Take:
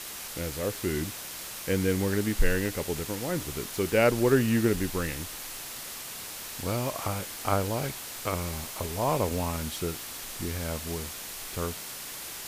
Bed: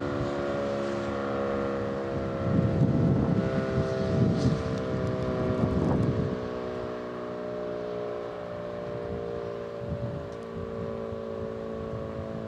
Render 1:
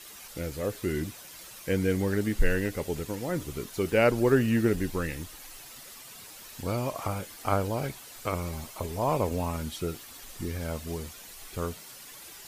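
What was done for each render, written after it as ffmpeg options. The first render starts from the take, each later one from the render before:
ffmpeg -i in.wav -af "afftdn=noise_reduction=10:noise_floor=-40" out.wav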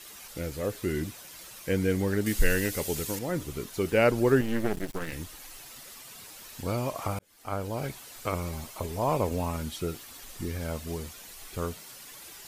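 ffmpeg -i in.wav -filter_complex "[0:a]asettb=1/sr,asplit=3[link_01][link_02][link_03];[link_01]atrim=end=2.264[link_04];[link_02]atrim=start=2.26:end=3.19,asetpts=PTS-STARTPTS,afade=type=in:duration=0.004:curve=qsin,afade=type=out:start_time=0.926:duration=0.004:curve=qsin,highshelf=frequency=3200:gain=11.5[link_05];[link_03]atrim=start=3.186[link_06];[link_04][link_05]acrossfade=duration=0.004:curve1=hsin:curve2=qsin[link_07];[link_07][link_06]acrossfade=duration=0.004:curve1=qsin:curve2=hsin,asettb=1/sr,asplit=3[link_08][link_09][link_10];[link_08]atrim=end=4.414[link_11];[link_09]atrim=start=4.41:end=5.12,asetpts=PTS-STARTPTS,afade=type=in:duration=0.004:curve=qsin,afade=type=out:start_time=0.706:duration=0.004:curve=qsin,aeval=exprs='max(val(0),0)':channel_layout=same[link_12];[link_10]atrim=start=5.116[link_13];[link_11][link_12]acrossfade=duration=0.004:curve1=hsin:curve2=qsin[link_14];[link_14][link_13]acrossfade=duration=0.004:curve1=qsin:curve2=hsin,asplit=2[link_15][link_16];[link_15]atrim=end=7.19,asetpts=PTS-STARTPTS,afade=type=out:start_time=7.186:duration=0.004:curve=hsin[link_17];[link_16]atrim=start=7.19,asetpts=PTS-STARTPTS,afade=type=in:duration=0.75[link_18];[link_17][link_18]concat=n=2:v=0:a=1" out.wav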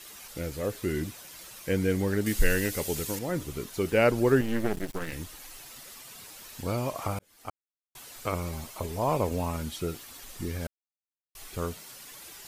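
ffmpeg -i in.wav -filter_complex "[0:a]asplit=5[link_01][link_02][link_03][link_04][link_05];[link_01]atrim=end=7.5,asetpts=PTS-STARTPTS,afade=type=out:start_time=7.496:duration=0.004:curve=hsin[link_06];[link_02]atrim=start=7.5:end=7.95,asetpts=PTS-STARTPTS,volume=0[link_07];[link_03]atrim=start=7.95:end=10.67,asetpts=PTS-STARTPTS,afade=type=in:duration=0.004:curve=hsin,afade=type=out:start_time=2.716:duration=0.004:curve=hsin[link_08];[link_04]atrim=start=10.67:end=11.35,asetpts=PTS-STARTPTS,volume=0[link_09];[link_05]atrim=start=11.35,asetpts=PTS-STARTPTS,afade=type=in:duration=0.004:curve=hsin[link_10];[link_06][link_07][link_08][link_09][link_10]concat=n=5:v=0:a=1" out.wav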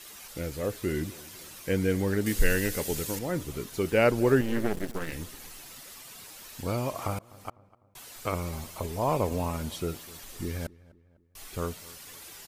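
ffmpeg -i in.wav -filter_complex "[0:a]asplit=2[link_01][link_02];[link_02]adelay=251,lowpass=frequency=2000:poles=1,volume=-21dB,asplit=2[link_03][link_04];[link_04]adelay=251,lowpass=frequency=2000:poles=1,volume=0.49,asplit=2[link_05][link_06];[link_06]adelay=251,lowpass=frequency=2000:poles=1,volume=0.49,asplit=2[link_07][link_08];[link_08]adelay=251,lowpass=frequency=2000:poles=1,volume=0.49[link_09];[link_01][link_03][link_05][link_07][link_09]amix=inputs=5:normalize=0" out.wav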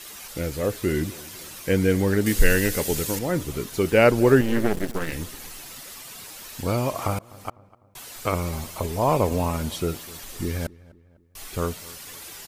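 ffmpeg -i in.wav -af "volume=6dB" out.wav

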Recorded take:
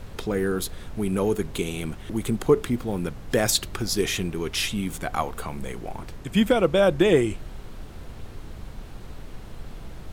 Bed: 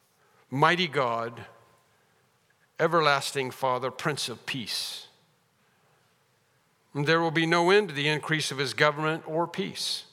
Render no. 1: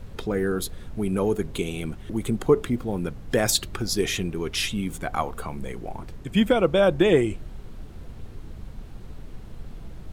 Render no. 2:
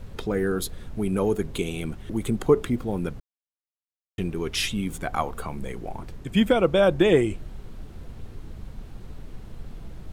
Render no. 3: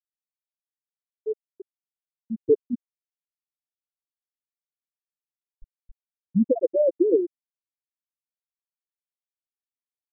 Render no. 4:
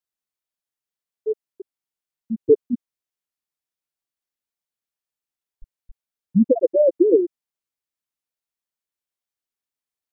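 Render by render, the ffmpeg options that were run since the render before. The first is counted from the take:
ffmpeg -i in.wav -af "afftdn=noise_reduction=6:noise_floor=-40" out.wav
ffmpeg -i in.wav -filter_complex "[0:a]asplit=3[link_01][link_02][link_03];[link_01]atrim=end=3.2,asetpts=PTS-STARTPTS,afade=type=out:start_time=3.196:duration=0.004:curve=hsin[link_04];[link_02]atrim=start=3.2:end=4.18,asetpts=PTS-STARTPTS,volume=0[link_05];[link_03]atrim=start=4.18,asetpts=PTS-STARTPTS,afade=type=in:duration=0.004:curve=hsin[link_06];[link_04][link_05][link_06]concat=n=3:v=0:a=1" out.wav
ffmpeg -i in.wav -af "afftfilt=real='re*gte(hypot(re,im),0.794)':imag='im*gte(hypot(re,im),0.794)':win_size=1024:overlap=0.75" out.wav
ffmpeg -i in.wav -af "volume=4.5dB" out.wav

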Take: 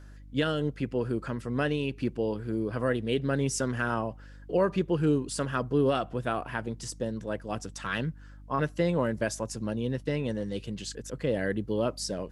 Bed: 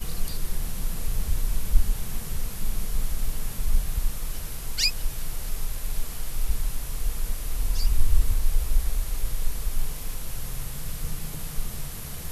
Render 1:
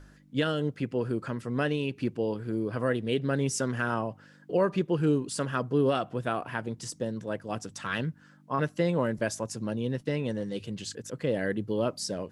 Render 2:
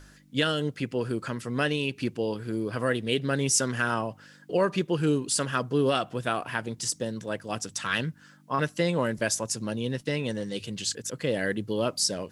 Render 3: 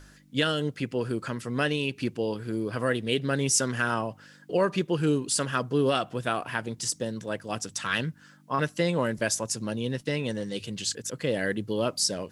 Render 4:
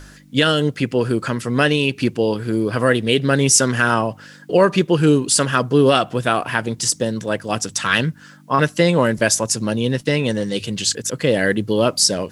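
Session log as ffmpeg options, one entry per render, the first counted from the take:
ffmpeg -i in.wav -af "bandreject=frequency=50:width_type=h:width=4,bandreject=frequency=100:width_type=h:width=4" out.wav
ffmpeg -i in.wav -af "highshelf=frequency=2000:gain=10.5" out.wav
ffmpeg -i in.wav -af anull out.wav
ffmpeg -i in.wav -af "volume=10.5dB,alimiter=limit=-2dB:level=0:latency=1" out.wav

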